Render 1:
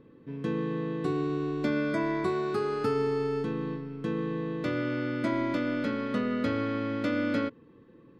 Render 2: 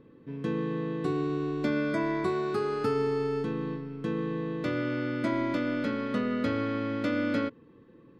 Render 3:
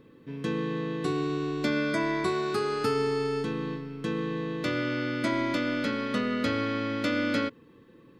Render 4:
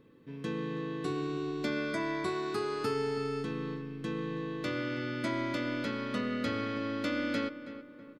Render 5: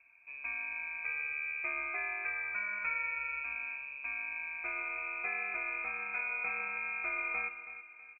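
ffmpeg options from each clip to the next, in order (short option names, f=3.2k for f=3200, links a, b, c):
-af anull
-af "highshelf=f=2.2k:g=11"
-filter_complex "[0:a]asplit=2[a][b];[b]adelay=324,lowpass=f=2.1k:p=1,volume=-12dB,asplit=2[c][d];[d]adelay=324,lowpass=f=2.1k:p=1,volume=0.47,asplit=2[e][f];[f]adelay=324,lowpass=f=2.1k:p=1,volume=0.47,asplit=2[g][h];[h]adelay=324,lowpass=f=2.1k:p=1,volume=0.47,asplit=2[i][j];[j]adelay=324,lowpass=f=2.1k:p=1,volume=0.47[k];[a][c][e][g][i][k]amix=inputs=6:normalize=0,volume=-5.5dB"
-filter_complex "[0:a]lowpass=f=2.3k:t=q:w=0.5098,lowpass=f=2.3k:t=q:w=0.6013,lowpass=f=2.3k:t=q:w=0.9,lowpass=f=2.3k:t=q:w=2.563,afreqshift=-2700,asplit=2[a][b];[b]adelay=151.6,volume=-17dB,highshelf=f=4k:g=-3.41[c];[a][c]amix=inputs=2:normalize=0,volume=-3.5dB"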